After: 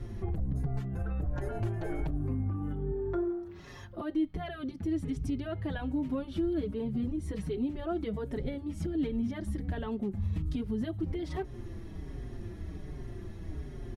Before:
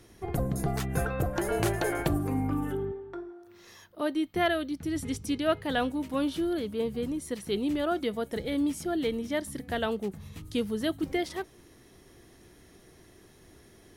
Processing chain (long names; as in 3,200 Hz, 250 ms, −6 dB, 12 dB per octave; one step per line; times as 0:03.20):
RIAA equalisation playback
notch filter 480 Hz, Q 12
downward compressor 6 to 1, threshold −32 dBFS, peak gain reduction 19 dB
0:04.70–0:05.17: parametric band 60 Hz −13.5 dB 1.5 octaves
brickwall limiter −30.5 dBFS, peak gain reduction 8.5 dB
barber-pole flanger 5.2 ms −1.3 Hz
level +8 dB